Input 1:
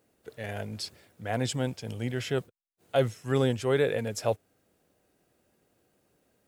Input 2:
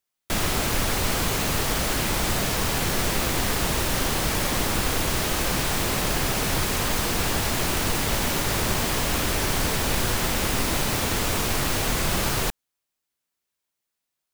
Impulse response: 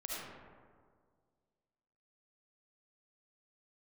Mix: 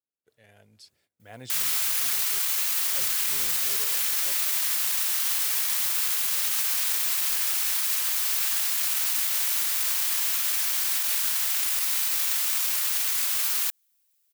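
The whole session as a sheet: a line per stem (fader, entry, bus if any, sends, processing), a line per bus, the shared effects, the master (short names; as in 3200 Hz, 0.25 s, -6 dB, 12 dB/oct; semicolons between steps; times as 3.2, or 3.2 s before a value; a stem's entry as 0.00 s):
0.77 s -22 dB -> 1.33 s -15 dB, 0.00 s, no send, gate -56 dBFS, range -14 dB
-1.5 dB, 1.20 s, no send, HPF 1200 Hz 12 dB/oct; high shelf 11000 Hz +11 dB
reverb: off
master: high shelf 2100 Hz +8.5 dB; limiter -16 dBFS, peak gain reduction 12.5 dB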